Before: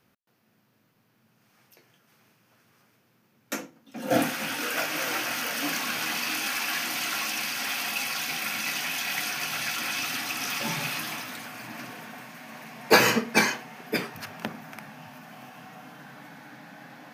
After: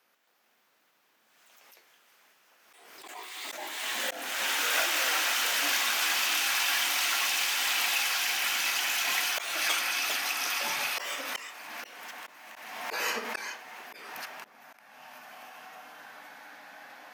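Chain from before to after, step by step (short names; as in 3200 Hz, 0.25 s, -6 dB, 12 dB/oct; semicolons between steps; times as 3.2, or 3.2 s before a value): HPF 580 Hz 12 dB/oct; echoes that change speed 0.123 s, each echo +3 st, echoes 2; auto swell 0.403 s; backwards sustainer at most 37 dB/s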